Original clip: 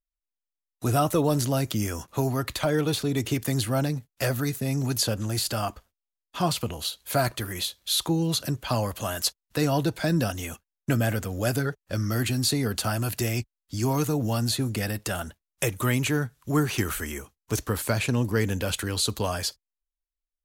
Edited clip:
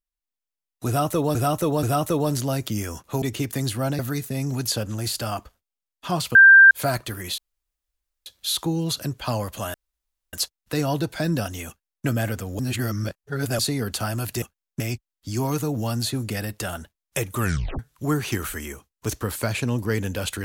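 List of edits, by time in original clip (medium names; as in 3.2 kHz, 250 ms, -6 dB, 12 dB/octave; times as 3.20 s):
0.87–1.35 s: loop, 3 plays
2.26–3.14 s: delete
3.91–4.30 s: delete
6.66–7.02 s: bleep 1.58 kHz -6.5 dBFS
7.69 s: insert room tone 0.88 s
9.17 s: insert room tone 0.59 s
10.52–10.90 s: copy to 13.26 s
11.43–12.43 s: reverse
15.84 s: tape stop 0.41 s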